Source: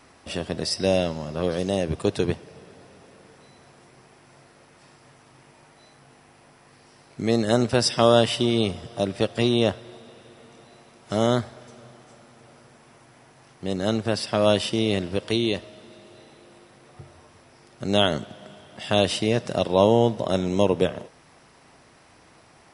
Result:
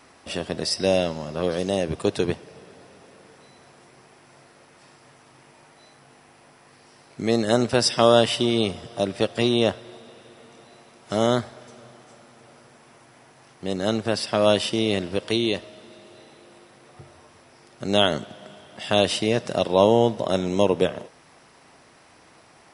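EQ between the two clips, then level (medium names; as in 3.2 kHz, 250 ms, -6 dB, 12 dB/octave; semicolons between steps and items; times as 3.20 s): bass shelf 140 Hz -7 dB; +1.5 dB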